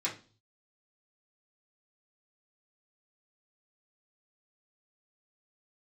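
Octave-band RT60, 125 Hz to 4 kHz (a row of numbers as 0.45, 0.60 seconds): 0.80, 0.50, 0.40, 0.35, 0.30, 0.40 seconds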